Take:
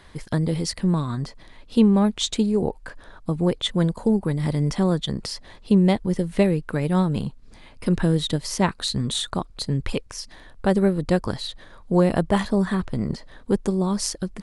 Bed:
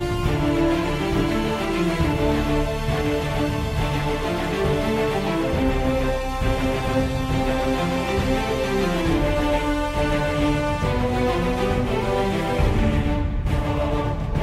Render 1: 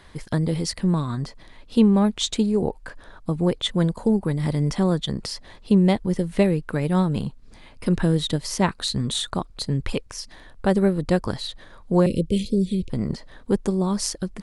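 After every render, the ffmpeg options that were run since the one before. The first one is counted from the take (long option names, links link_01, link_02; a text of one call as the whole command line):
ffmpeg -i in.wav -filter_complex "[0:a]asettb=1/sr,asplit=3[link_01][link_02][link_03];[link_01]atrim=end=12.064[link_04];[link_02]atrim=start=12.06:end=12.9,asetpts=PTS-STARTPTS,afade=type=in:duration=0.004:curve=qsin,afade=type=out:start_time=0.836:duration=0.004:curve=qsin,asuperstop=centerf=1100:order=20:qfactor=0.63[link_05];[link_03]atrim=start=12.896[link_06];[link_04][link_05]acrossfade=duration=0.004:curve1=hsin:curve2=qsin[link_07];[link_07][link_06]acrossfade=duration=0.004:curve1=qsin:curve2=hsin" out.wav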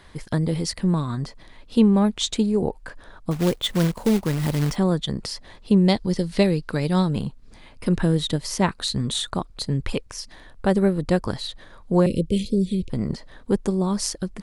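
ffmpeg -i in.wav -filter_complex "[0:a]asettb=1/sr,asplit=3[link_01][link_02][link_03];[link_01]atrim=end=3.314[link_04];[link_02]atrim=start=3.31:end=4.76,asetpts=PTS-STARTPTS,afade=type=in:duration=0.004:curve=qsin,afade=type=out:start_time=1.446:duration=0.004:curve=qsin,acrusher=bits=3:mode=log:mix=0:aa=0.000001[link_05];[link_03]atrim=start=4.756[link_06];[link_04][link_05]acrossfade=duration=0.004:curve1=hsin:curve2=qsin[link_07];[link_07][link_06]acrossfade=duration=0.004:curve1=qsin:curve2=hsin,asettb=1/sr,asplit=3[link_08][link_09][link_10];[link_08]atrim=end=5.884[link_11];[link_09]atrim=start=5.88:end=7.11,asetpts=PTS-STARTPTS,afade=type=in:duration=0.004:curve=qsin,afade=type=out:start_time=1.226:duration=0.004:curve=qsin,equalizer=frequency=4600:width_type=o:width=0.71:gain=12.5[link_12];[link_10]atrim=start=7.106[link_13];[link_11][link_12]acrossfade=duration=0.004:curve1=hsin:curve2=qsin[link_14];[link_14][link_13]acrossfade=duration=0.004:curve1=qsin:curve2=hsin" out.wav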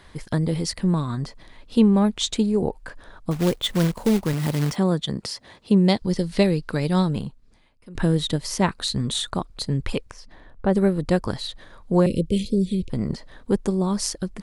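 ffmpeg -i in.wav -filter_complex "[0:a]asettb=1/sr,asplit=3[link_01][link_02][link_03];[link_01]atrim=end=4.334[link_04];[link_02]atrim=start=4.33:end=6.02,asetpts=PTS-STARTPTS,afade=type=in:duration=0.004:curve=qsin,afade=type=out:start_time=1.686:duration=0.004:curve=qsin,highpass=92[link_05];[link_03]atrim=start=6.016[link_06];[link_04][link_05]acrossfade=duration=0.004:curve1=hsin:curve2=qsin[link_07];[link_07][link_06]acrossfade=duration=0.004:curve1=qsin:curve2=hsin,asettb=1/sr,asplit=3[link_08][link_09][link_10];[link_08]atrim=end=10.114[link_11];[link_09]atrim=start=10.11:end=10.73,asetpts=PTS-STARTPTS,afade=type=in:duration=0.004:curve=qsin,afade=type=out:start_time=0.616:duration=0.004:curve=qsin,lowpass=frequency=1300:poles=1[link_12];[link_10]atrim=start=10.726[link_13];[link_11][link_12]acrossfade=duration=0.004:curve1=hsin:curve2=qsin[link_14];[link_14][link_13]acrossfade=duration=0.004:curve1=qsin:curve2=hsin,asplit=2[link_15][link_16];[link_15]atrim=end=7.95,asetpts=PTS-STARTPTS,afade=type=out:start_time=7.09:duration=0.86:curve=qua:silence=0.0841395[link_17];[link_16]atrim=start=7.95,asetpts=PTS-STARTPTS,afade=type=in:duration=0.004:curve=hsin:silence=0.0841395[link_18];[link_17][link_18]concat=n=2:v=0:a=1" out.wav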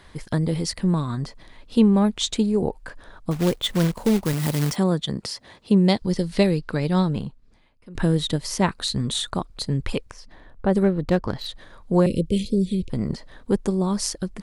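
ffmpeg -i in.wav -filter_complex "[0:a]asettb=1/sr,asplit=3[link_01][link_02][link_03];[link_01]atrim=end=4.254[link_04];[link_02]atrim=start=4.25:end=4.84,asetpts=PTS-STARTPTS,afade=type=in:duration=0.004:curve=qsin,afade=type=out:start_time=0.586:duration=0.004:curve=qsin,highshelf=frequency=6000:gain=7.5[link_05];[link_03]atrim=start=4.836[link_06];[link_04][link_05]acrossfade=duration=0.004:curve1=hsin:curve2=qsin[link_07];[link_07][link_06]acrossfade=duration=0.004:curve1=qsin:curve2=hsin,asettb=1/sr,asplit=3[link_08][link_09][link_10];[link_08]atrim=end=6.594[link_11];[link_09]atrim=start=6.59:end=7.95,asetpts=PTS-STARTPTS,afade=type=in:duration=0.004:curve=qsin,afade=type=out:start_time=1.356:duration=0.004:curve=qsin,highshelf=frequency=7500:gain=-9.5[link_12];[link_10]atrim=start=7.946[link_13];[link_11][link_12]acrossfade=duration=0.004:curve1=hsin:curve2=qsin[link_14];[link_14][link_13]acrossfade=duration=0.004:curve1=qsin:curve2=hsin,asettb=1/sr,asplit=3[link_15][link_16][link_17];[link_15]atrim=end=10.834[link_18];[link_16]atrim=start=10.83:end=11.46,asetpts=PTS-STARTPTS,afade=type=in:duration=0.004:curve=qsin,afade=type=out:start_time=0.626:duration=0.004:curve=qsin,adynamicsmooth=sensitivity=3:basefreq=3200[link_19];[link_17]atrim=start=11.456[link_20];[link_18][link_19]acrossfade=duration=0.004:curve1=hsin:curve2=qsin[link_21];[link_21][link_20]acrossfade=duration=0.004:curve1=qsin:curve2=hsin" out.wav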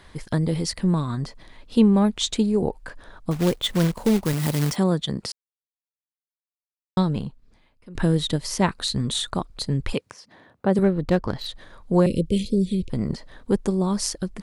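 ffmpeg -i in.wav -filter_complex "[0:a]asettb=1/sr,asplit=3[link_01][link_02][link_03];[link_01]atrim=end=9.934[link_04];[link_02]atrim=start=9.93:end=10.79,asetpts=PTS-STARTPTS,afade=type=in:duration=0.004:curve=qsin,afade=type=out:start_time=0.856:duration=0.004:curve=qsin,highpass=frequency=110:width=0.5412,highpass=frequency=110:width=1.3066[link_05];[link_03]atrim=start=10.786[link_06];[link_04][link_05]acrossfade=duration=0.004:curve1=hsin:curve2=qsin[link_07];[link_07][link_06]acrossfade=duration=0.004:curve1=qsin:curve2=hsin,asplit=3[link_08][link_09][link_10];[link_08]atrim=end=5.32,asetpts=PTS-STARTPTS,afade=type=out:start_time=5.316:duration=0.004:curve=hsin[link_11];[link_09]atrim=start=5.32:end=6.97,asetpts=PTS-STARTPTS,volume=0[link_12];[link_10]atrim=start=6.97,asetpts=PTS-STARTPTS,afade=type=in:duration=0.004:curve=hsin[link_13];[link_11][link_12][link_13]concat=n=3:v=0:a=1" out.wav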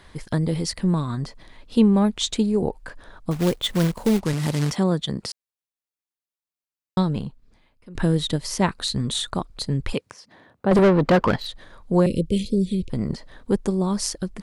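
ffmpeg -i in.wav -filter_complex "[0:a]asettb=1/sr,asplit=3[link_01][link_02][link_03];[link_01]atrim=end=4.204[link_04];[link_02]atrim=start=4.2:end=4.94,asetpts=PTS-STARTPTS,afade=type=in:duration=0.004:curve=qsin,afade=type=out:start_time=0.736:duration=0.004:curve=qsin,lowpass=8700[link_05];[link_03]atrim=start=4.936[link_06];[link_04][link_05]acrossfade=duration=0.004:curve1=hsin:curve2=qsin[link_07];[link_07][link_06]acrossfade=duration=0.004:curve1=qsin:curve2=hsin,asettb=1/sr,asplit=3[link_08][link_09][link_10];[link_08]atrim=end=10.714[link_11];[link_09]atrim=start=10.71:end=11.36,asetpts=PTS-STARTPTS,afade=type=in:duration=0.004:curve=qsin,afade=type=out:start_time=0.646:duration=0.004:curve=qsin,asplit=2[link_12][link_13];[link_13]highpass=frequency=720:poles=1,volume=28dB,asoftclip=type=tanh:threshold=-8dB[link_14];[link_12][link_14]amix=inputs=2:normalize=0,lowpass=frequency=1800:poles=1,volume=-6dB[link_15];[link_10]atrim=start=11.356[link_16];[link_11][link_15]acrossfade=duration=0.004:curve1=hsin:curve2=qsin[link_17];[link_17][link_16]acrossfade=duration=0.004:curve1=qsin:curve2=hsin" out.wav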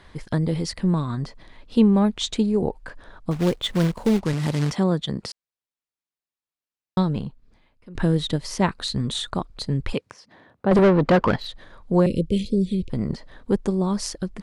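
ffmpeg -i in.wav -af "highshelf=frequency=8000:gain=-10.5" out.wav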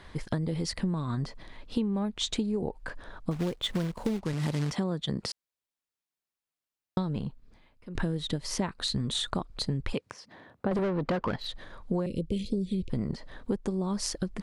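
ffmpeg -i in.wav -af "acompressor=threshold=-26dB:ratio=12" out.wav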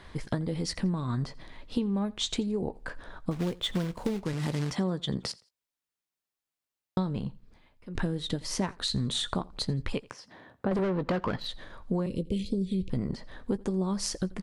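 ffmpeg -i in.wav -filter_complex "[0:a]asplit=2[link_01][link_02];[link_02]adelay=16,volume=-13.5dB[link_03];[link_01][link_03]amix=inputs=2:normalize=0,aecho=1:1:85|170:0.0708|0.0198" out.wav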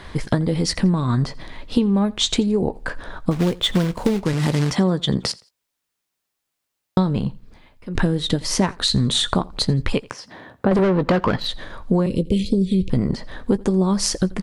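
ffmpeg -i in.wav -af "volume=11dB" out.wav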